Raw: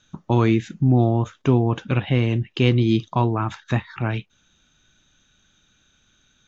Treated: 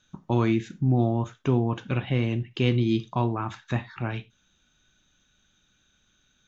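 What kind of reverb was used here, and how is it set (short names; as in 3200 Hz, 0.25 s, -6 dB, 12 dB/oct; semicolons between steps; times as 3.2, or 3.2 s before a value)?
non-linear reverb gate 0.12 s falling, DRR 11 dB; gain -5.5 dB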